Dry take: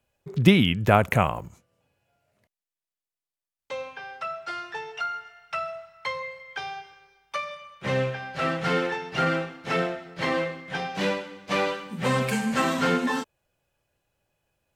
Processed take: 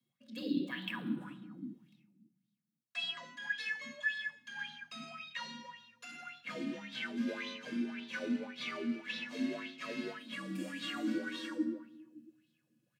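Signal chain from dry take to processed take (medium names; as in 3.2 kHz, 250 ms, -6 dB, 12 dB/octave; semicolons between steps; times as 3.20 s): gliding tape speed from 129% -> 98%; high-pass 64 Hz 24 dB/octave; amplifier tone stack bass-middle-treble 6-0-2; reverberation RT60 0.95 s, pre-delay 25 ms, DRR 1.5 dB; reverse; compression 4:1, threshold -50 dBFS, peak gain reduction 18.5 dB; reverse; comb 4.3 ms, depth 45%; frequency shift +55 Hz; sweeping bell 1.8 Hz 250–3800 Hz +17 dB; trim +4.5 dB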